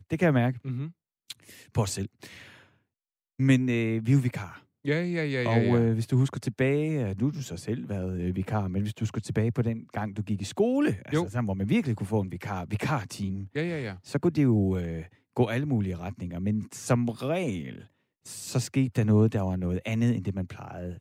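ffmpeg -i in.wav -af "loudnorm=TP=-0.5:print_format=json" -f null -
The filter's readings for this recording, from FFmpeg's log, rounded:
"input_i" : "-28.0",
"input_tp" : "-10.4",
"input_lra" : "4.0",
"input_thresh" : "-38.6",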